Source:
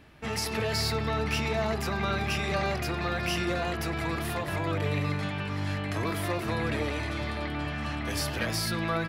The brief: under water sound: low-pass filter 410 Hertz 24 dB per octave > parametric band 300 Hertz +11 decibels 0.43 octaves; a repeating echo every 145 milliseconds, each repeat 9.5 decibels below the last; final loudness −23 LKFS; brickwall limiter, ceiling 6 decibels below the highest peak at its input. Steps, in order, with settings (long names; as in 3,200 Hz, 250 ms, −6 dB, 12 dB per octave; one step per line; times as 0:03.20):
brickwall limiter −21.5 dBFS
low-pass filter 410 Hz 24 dB per octave
parametric band 300 Hz +11 dB 0.43 octaves
repeating echo 145 ms, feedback 33%, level −9.5 dB
level +8.5 dB